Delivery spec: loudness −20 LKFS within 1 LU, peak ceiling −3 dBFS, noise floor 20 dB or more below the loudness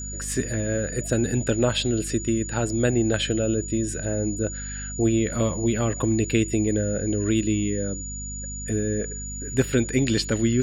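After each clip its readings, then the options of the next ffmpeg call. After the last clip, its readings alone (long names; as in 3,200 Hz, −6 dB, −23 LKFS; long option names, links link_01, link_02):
mains hum 50 Hz; hum harmonics up to 250 Hz; level of the hum −33 dBFS; interfering tone 6,900 Hz; level of the tone −34 dBFS; integrated loudness −24.5 LKFS; sample peak −7.0 dBFS; target loudness −20.0 LKFS
→ -af "bandreject=frequency=50:width_type=h:width=6,bandreject=frequency=100:width_type=h:width=6,bandreject=frequency=150:width_type=h:width=6,bandreject=frequency=200:width_type=h:width=6,bandreject=frequency=250:width_type=h:width=6"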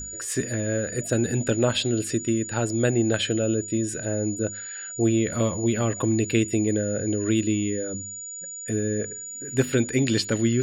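mains hum none found; interfering tone 6,900 Hz; level of the tone −34 dBFS
→ -af "bandreject=frequency=6900:width=30"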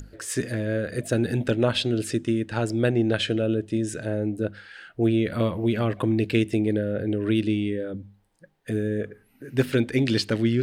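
interfering tone none found; integrated loudness −25.5 LKFS; sample peak −7.5 dBFS; target loudness −20.0 LKFS
→ -af "volume=5.5dB,alimiter=limit=-3dB:level=0:latency=1"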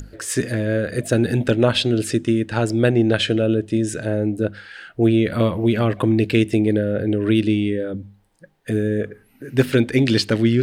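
integrated loudness −20.0 LKFS; sample peak −3.0 dBFS; background noise floor −57 dBFS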